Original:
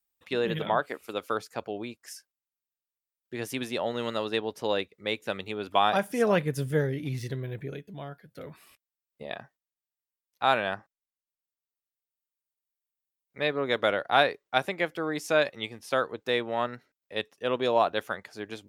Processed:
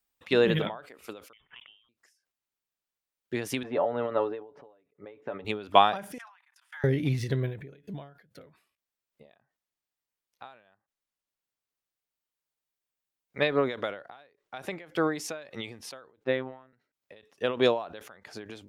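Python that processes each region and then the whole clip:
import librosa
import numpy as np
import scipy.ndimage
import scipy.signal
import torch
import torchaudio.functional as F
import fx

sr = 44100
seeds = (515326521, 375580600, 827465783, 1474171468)

y = fx.chain(x, sr, fx.block_float(bits=5),
    fx.peak_eq(hz=830.0, db=4.5, octaves=0.32),
    fx.freq_invert(carrier_hz=3500), at=(1.33, 1.89))
y = fx.chain(y, sr, fx.lowpass(hz=1100.0, slope=12),
    fx.low_shelf(hz=200.0, db=-12.0),
    fx.comb(ms=7.0, depth=0.55), at=(3.63, 5.45))
y = fx.chain(y, sr, fx.steep_highpass(hz=820.0, slope=72),
    fx.high_shelf(hz=4500.0, db=-10.0),
    fx.level_steps(step_db=24), at=(6.18, 6.84))
y = fx.chain(y, sr, fx.robotise(hz=130.0),
    fx.air_absorb(metres=430.0), at=(16.24, 16.73))
y = fx.high_shelf(y, sr, hz=7300.0, db=-7.5)
y = fx.end_taper(y, sr, db_per_s=110.0)
y = y * librosa.db_to_amplitude(6.0)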